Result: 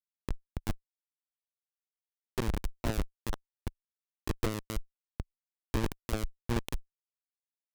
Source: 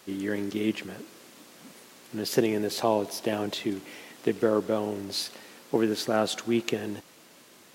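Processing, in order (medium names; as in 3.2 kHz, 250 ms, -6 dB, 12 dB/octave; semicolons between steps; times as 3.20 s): Schmitt trigger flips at -19.5 dBFS; Chebyshev shaper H 6 -6 dB, 7 -19 dB, 8 -14 dB, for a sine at -23.5 dBFS; trim +1 dB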